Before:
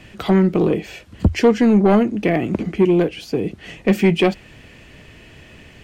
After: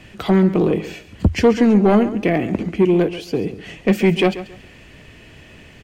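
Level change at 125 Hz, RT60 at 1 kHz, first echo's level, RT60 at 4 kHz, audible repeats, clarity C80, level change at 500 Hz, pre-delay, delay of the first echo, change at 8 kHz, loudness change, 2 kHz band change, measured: 0.0 dB, none, -14.0 dB, none, 2, none, 0.0 dB, none, 0.137 s, n/a, 0.0 dB, 0.0 dB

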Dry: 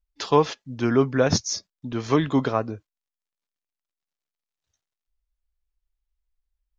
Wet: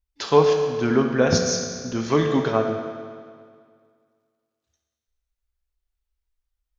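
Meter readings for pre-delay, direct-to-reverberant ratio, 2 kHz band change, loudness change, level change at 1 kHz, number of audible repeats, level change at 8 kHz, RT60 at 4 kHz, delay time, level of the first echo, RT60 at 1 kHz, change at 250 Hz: 6 ms, 2.0 dB, +3.0 dB, +2.0 dB, +1.0 dB, none, n/a, 1.8 s, none, none, 2.0 s, +1.0 dB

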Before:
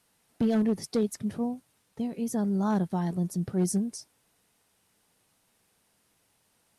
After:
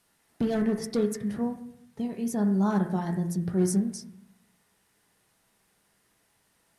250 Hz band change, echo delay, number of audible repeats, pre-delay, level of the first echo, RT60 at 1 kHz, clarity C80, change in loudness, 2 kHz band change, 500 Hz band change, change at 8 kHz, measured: +1.0 dB, none, none, 3 ms, none, 0.65 s, 10.0 dB, +1.0 dB, +3.5 dB, +2.0 dB, 0.0 dB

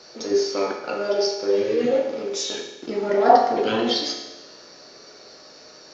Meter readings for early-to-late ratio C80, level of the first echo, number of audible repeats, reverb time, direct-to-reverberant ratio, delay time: 7.0 dB, none, none, 1.1 s, 1.0 dB, none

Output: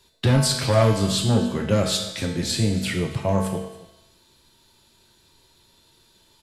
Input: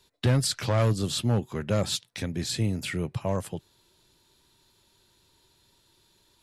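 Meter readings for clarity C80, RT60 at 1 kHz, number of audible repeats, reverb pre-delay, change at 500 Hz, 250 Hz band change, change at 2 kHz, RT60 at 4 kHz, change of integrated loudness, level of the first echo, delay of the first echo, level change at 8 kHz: 7.0 dB, 1.0 s, 1, 5 ms, +7.0 dB, +7.0 dB, +6.0 dB, 0.95 s, +6.0 dB, -18.5 dB, 0.28 s, +6.0 dB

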